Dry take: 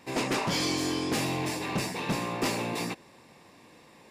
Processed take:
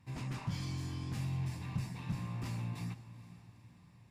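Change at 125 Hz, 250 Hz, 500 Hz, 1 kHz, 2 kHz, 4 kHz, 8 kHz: +0.5 dB, -12.0 dB, -22.5 dB, -17.5 dB, -17.5 dB, -18.5 dB, -18.5 dB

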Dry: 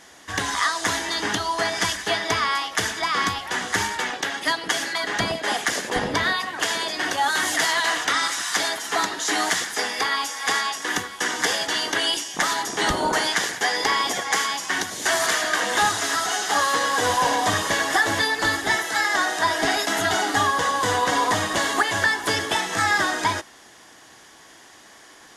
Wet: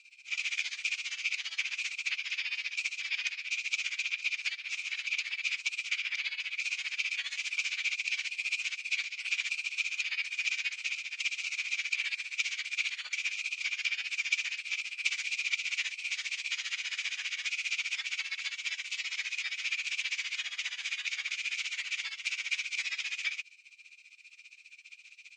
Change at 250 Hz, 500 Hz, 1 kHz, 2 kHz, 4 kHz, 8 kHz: under -40 dB, under -40 dB, -36.0 dB, -9.0 dB, -10.0 dB, -15.0 dB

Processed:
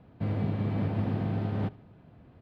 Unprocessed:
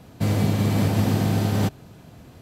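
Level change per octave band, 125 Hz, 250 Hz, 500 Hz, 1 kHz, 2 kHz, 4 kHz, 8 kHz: -8.5 dB, -8.5 dB, -9.0 dB, -10.0 dB, -12.0 dB, under -15 dB, under -35 dB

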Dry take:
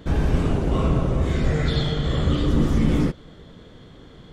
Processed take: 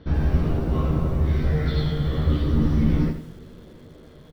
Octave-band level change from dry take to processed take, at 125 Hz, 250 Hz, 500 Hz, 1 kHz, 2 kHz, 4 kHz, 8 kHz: 0.0 dB, -1.5 dB, -4.0 dB, -4.0 dB, -4.5 dB, -7.0 dB, no reading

